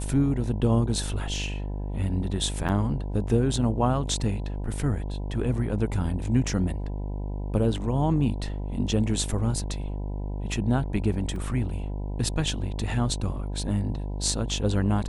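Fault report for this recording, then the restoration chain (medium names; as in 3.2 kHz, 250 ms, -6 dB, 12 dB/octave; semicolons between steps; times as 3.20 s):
buzz 50 Hz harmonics 20 -31 dBFS
2.68–2.69 s: dropout 8.2 ms
11.36 s: dropout 2.8 ms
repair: de-hum 50 Hz, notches 20; interpolate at 2.68 s, 8.2 ms; interpolate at 11.36 s, 2.8 ms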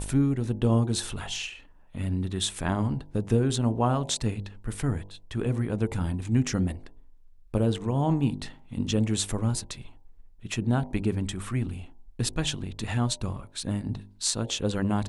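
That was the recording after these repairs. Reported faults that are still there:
nothing left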